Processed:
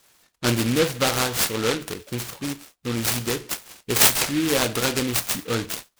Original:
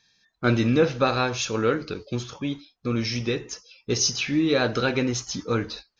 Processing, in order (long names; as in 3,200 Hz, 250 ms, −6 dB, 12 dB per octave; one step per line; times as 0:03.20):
high-shelf EQ 2,700 Hz +12 dB
short delay modulated by noise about 2,400 Hz, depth 0.12 ms
level −1.5 dB